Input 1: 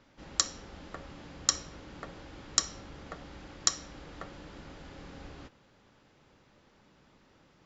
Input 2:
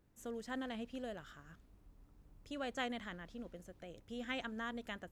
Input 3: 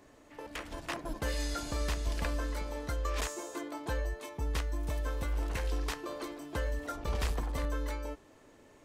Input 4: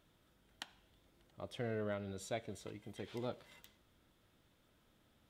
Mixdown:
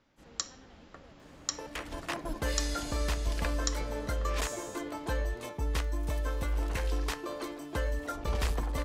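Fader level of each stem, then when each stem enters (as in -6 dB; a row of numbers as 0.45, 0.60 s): -7.5, -16.5, +2.0, -6.0 dB; 0.00, 0.00, 1.20, 2.20 s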